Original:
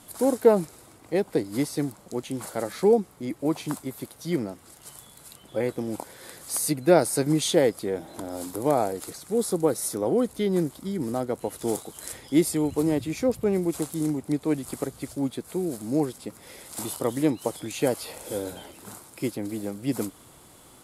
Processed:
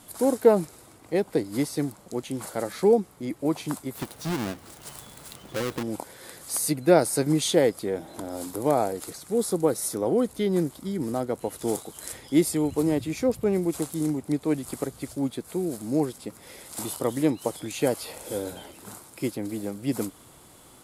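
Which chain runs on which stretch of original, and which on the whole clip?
3.95–5.83 half-waves squared off + compressor 4:1, threshold -26 dBFS
whole clip: dry

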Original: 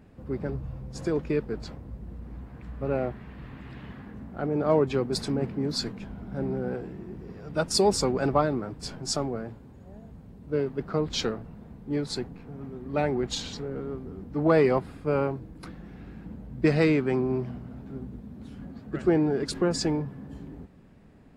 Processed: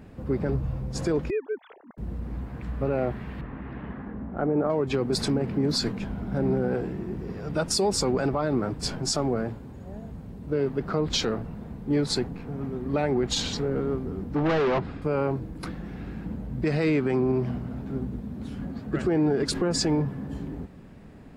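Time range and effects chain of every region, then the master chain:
1.3–1.98 sine-wave speech + compressor 4:1, threshold -29 dBFS + low shelf 340 Hz -7.5 dB
3.41–4.7 LPF 1600 Hz + bell 110 Hz -7.5 dB 0.67 oct
14.35–15.02 overloaded stage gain 28 dB + air absorption 160 m
whole clip: compressor, threshold -25 dBFS; limiter -23 dBFS; gain +7 dB

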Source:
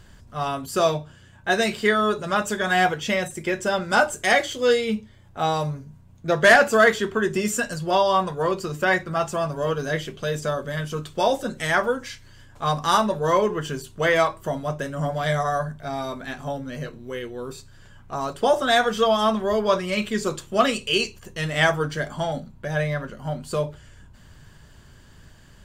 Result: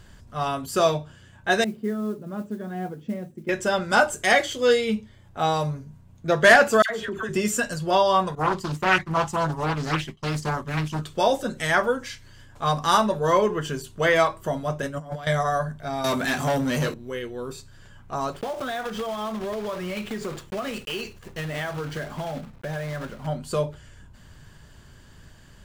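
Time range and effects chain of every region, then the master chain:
1.64–3.49 band-pass 230 Hz, Q 1.9 + modulation noise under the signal 29 dB
6.82–7.29 dispersion lows, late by 82 ms, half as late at 1400 Hz + compressor 5:1, threshold -26 dBFS
8.35–11.02 expander -31 dBFS + comb 1 ms, depth 73% + Doppler distortion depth 0.66 ms
14.82–15.27 expander -27 dBFS + negative-ratio compressor -31 dBFS, ratio -0.5
16.04–16.94 HPF 90 Hz + high shelf 4700 Hz +8.5 dB + sample leveller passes 3
18.32–23.27 block floating point 3-bit + high shelf 4200 Hz -11.5 dB + compressor 8:1, threshold -26 dBFS
whole clip: dry

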